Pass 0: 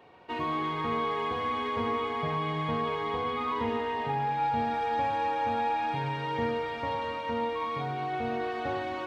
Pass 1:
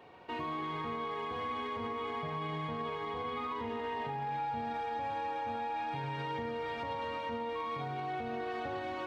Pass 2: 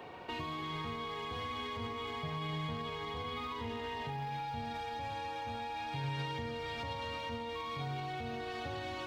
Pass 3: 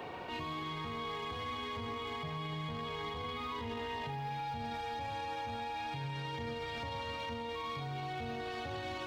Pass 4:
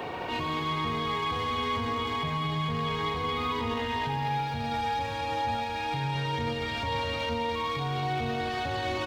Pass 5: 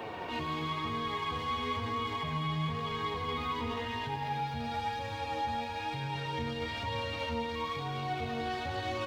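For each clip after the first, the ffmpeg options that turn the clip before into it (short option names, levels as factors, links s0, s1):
-af "alimiter=level_in=2:limit=0.0631:level=0:latency=1:release=86,volume=0.501"
-filter_complex "[0:a]acrossover=split=130|3000[s0][s1][s2];[s1]acompressor=threshold=0.002:ratio=2.5[s3];[s0][s3][s2]amix=inputs=3:normalize=0,volume=2.51"
-af "alimiter=level_in=4.47:limit=0.0631:level=0:latency=1:release=12,volume=0.224,volume=1.68"
-af "aecho=1:1:211:0.473,volume=2.66"
-af "flanger=delay=8.9:depth=4.6:regen=45:speed=1:shape=sinusoidal,volume=0.891"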